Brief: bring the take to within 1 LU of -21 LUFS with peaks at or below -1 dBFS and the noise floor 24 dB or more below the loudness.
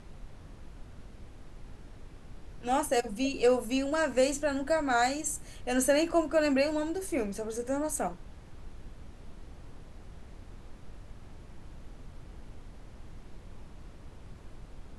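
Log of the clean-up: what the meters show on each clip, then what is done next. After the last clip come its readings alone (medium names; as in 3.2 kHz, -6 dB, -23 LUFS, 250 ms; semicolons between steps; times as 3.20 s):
noise floor -50 dBFS; noise floor target -54 dBFS; loudness -29.5 LUFS; peak level -13.0 dBFS; loudness target -21.0 LUFS
-> noise print and reduce 6 dB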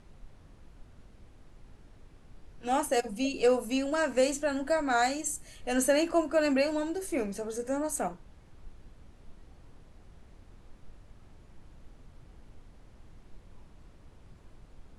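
noise floor -56 dBFS; loudness -29.5 LUFS; peak level -13.0 dBFS; loudness target -21.0 LUFS
-> trim +8.5 dB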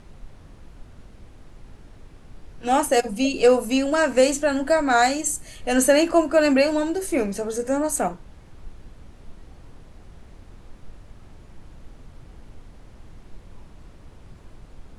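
loudness -21.0 LUFS; peak level -4.5 dBFS; noise floor -47 dBFS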